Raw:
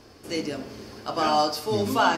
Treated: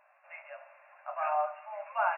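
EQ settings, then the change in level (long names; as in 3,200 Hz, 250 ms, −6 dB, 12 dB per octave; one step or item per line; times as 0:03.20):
linear-phase brick-wall band-pass 550–2,800 Hz
−7.5 dB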